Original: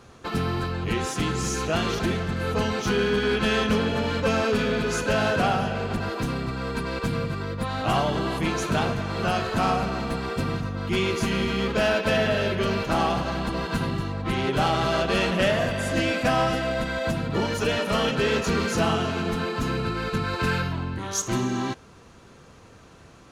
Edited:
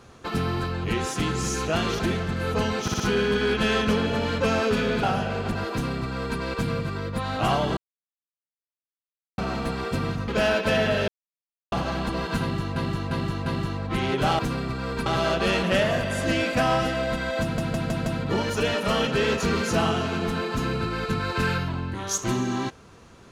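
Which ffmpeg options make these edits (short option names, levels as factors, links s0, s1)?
-filter_complex "[0:a]asplit=19[s0][s1][s2][s3][s4][s5][s6][s7][s8][s9][s10][s11][s12][s13][s14][s15][s16][s17][s18];[s0]atrim=end=2.882[s19];[s1]atrim=start=2.818:end=2.882[s20];[s2]atrim=start=2.818:end=2.882[s21];[s3]atrim=start=2.818:end=4.852[s22];[s4]atrim=start=5.478:end=8.22,asetpts=PTS-STARTPTS,afade=t=out:st=2.738:d=0.004:c=hsin[s23];[s5]atrim=start=8.22:end=9.83,asetpts=PTS-STARTPTS,volume=0[s24];[s6]atrim=start=9.83:end=10.732,asetpts=PTS-STARTPTS,afade=t=in:d=0.004:c=hsin[s25];[s7]atrim=start=11.678:end=12.48,asetpts=PTS-STARTPTS,afade=t=out:st=0.798:d=0.004:c=hsin[s26];[s8]atrim=start=12.48:end=13.12,asetpts=PTS-STARTPTS,volume=0[s27];[s9]atrim=start=13.12:end=14.162,asetpts=PTS-STARTPTS,afade=t=in:d=0.004:c=hsin[s28];[s10]atrim=start=13.808:end=14.162[s29];[s11]atrim=start=13.808:end=14.162[s30];[s12]atrim=start=13.808:end=14.742[s31];[s13]atrim=start=6.168:end=6.842[s32];[s14]atrim=start=14.738:end=17.262[s33];[s15]atrim=start=17.098:end=17.262[s34];[s16]atrim=start=17.098:end=17.262[s35];[s17]atrim=start=17.098:end=17.262[s36];[s18]atrim=start=17.098[s37];[s19][s20]acrossfade=d=0.004:c1=hsin:c2=hsin[s38];[s38][s21]acrossfade=d=0.004:c1=hsin:c2=hsin[s39];[s39][s22]acrossfade=d=0.004:c1=hsin:c2=hsin[s40];[s23][s24][s25]concat=n=3:v=0:a=1[s41];[s40][s41]acrossfade=d=0.004:c1=hsin:c2=hsin[s42];[s26][s27][s28]concat=n=3:v=0:a=1[s43];[s42][s43]acrossfade=d=0.004:c1=hsin:c2=hsin[s44];[s44][s29]acrossfade=d=0.004:c1=hsin:c2=hsin[s45];[s45][s30]acrossfade=d=0.004:c1=hsin:c2=hsin[s46];[s46][s31]acrossfade=d=0.004:c1=hsin:c2=hsin[s47];[s47][s32]acrossfade=d=0.004:c1=hsin:c2=hsin[s48];[s48][s33]acrossfade=d=0.004:c1=hsin:c2=hsin[s49];[s49][s34]acrossfade=d=0.004:c1=hsin:c2=hsin[s50];[s50][s35]acrossfade=d=0.004:c1=hsin:c2=hsin[s51];[s51][s36]acrossfade=d=0.004:c1=hsin:c2=hsin[s52];[s52][s37]acrossfade=d=0.004:c1=hsin:c2=hsin"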